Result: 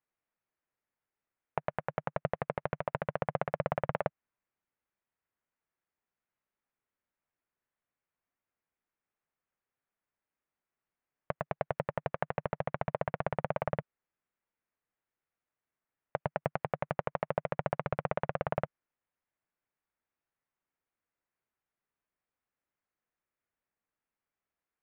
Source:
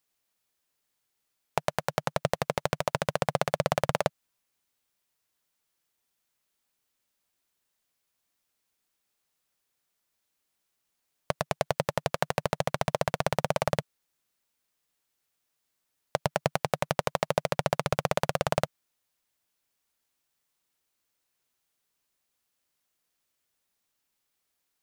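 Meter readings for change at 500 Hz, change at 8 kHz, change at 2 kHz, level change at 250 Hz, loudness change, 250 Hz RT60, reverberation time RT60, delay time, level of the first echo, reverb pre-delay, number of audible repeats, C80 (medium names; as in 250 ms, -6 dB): -5.5 dB, under -35 dB, -7.0 dB, -5.5 dB, -6.0 dB, no reverb, no reverb, no echo, no echo, no reverb, no echo, no reverb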